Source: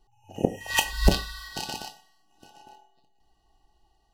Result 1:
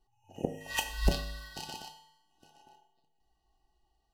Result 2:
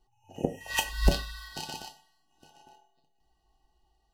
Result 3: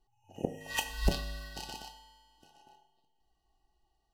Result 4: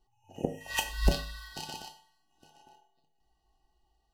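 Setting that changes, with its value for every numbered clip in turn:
tuned comb filter, decay: 0.85, 0.16, 1.8, 0.4 seconds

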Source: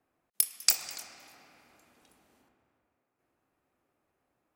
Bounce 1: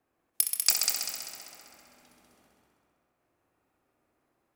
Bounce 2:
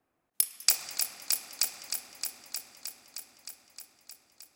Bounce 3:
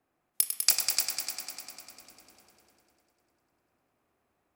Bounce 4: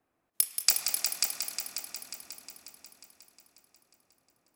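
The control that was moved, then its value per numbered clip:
echo machine with several playback heads, delay time: 65, 310, 100, 180 milliseconds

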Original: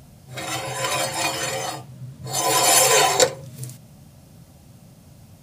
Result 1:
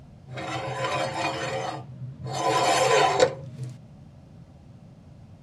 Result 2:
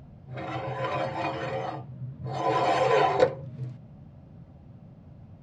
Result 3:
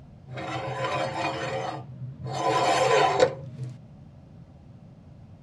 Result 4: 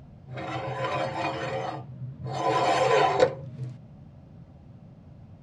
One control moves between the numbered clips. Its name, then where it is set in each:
head-to-tape spacing loss, at 10 kHz: 21, 46, 29, 37 decibels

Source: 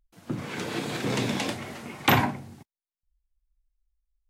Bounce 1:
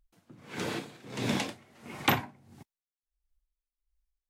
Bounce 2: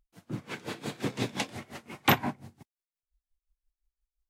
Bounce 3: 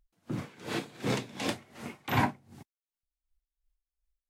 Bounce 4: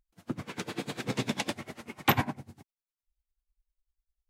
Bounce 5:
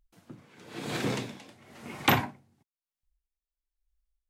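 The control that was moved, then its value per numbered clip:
tremolo with a sine in dB, speed: 1.5, 5.7, 2.7, 10, 1 Hertz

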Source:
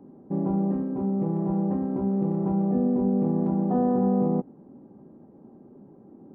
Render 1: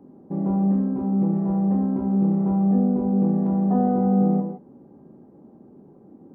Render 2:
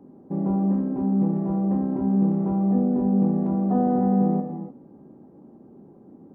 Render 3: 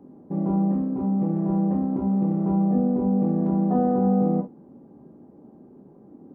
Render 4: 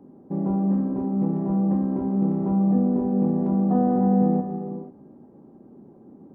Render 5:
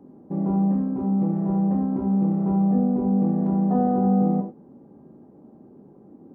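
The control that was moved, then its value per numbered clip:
reverb whose tail is shaped and stops, gate: 190, 320, 80, 520, 120 milliseconds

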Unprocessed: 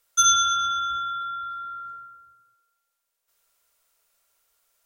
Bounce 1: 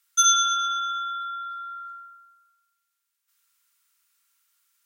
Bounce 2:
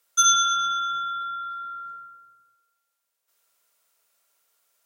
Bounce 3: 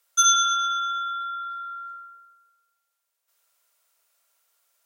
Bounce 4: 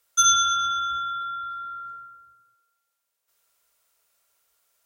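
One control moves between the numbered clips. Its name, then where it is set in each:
high-pass filter, corner frequency: 1,200, 140, 480, 41 Hertz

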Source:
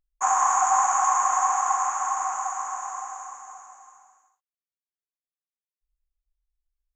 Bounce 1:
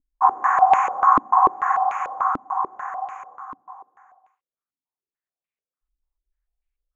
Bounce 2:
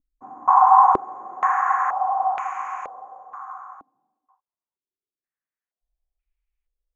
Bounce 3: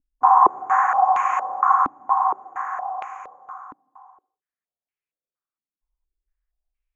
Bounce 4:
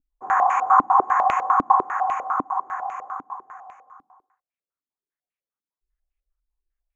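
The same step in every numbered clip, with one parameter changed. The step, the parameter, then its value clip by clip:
low-pass on a step sequencer, speed: 6.8, 2.1, 4.3, 10 Hertz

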